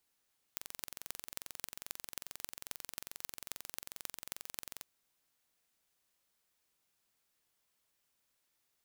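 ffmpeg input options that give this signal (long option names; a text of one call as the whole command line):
ffmpeg -f lavfi -i "aevalsrc='0.299*eq(mod(n,1969),0)*(0.5+0.5*eq(mod(n,11814),0))':duration=4.28:sample_rate=44100" out.wav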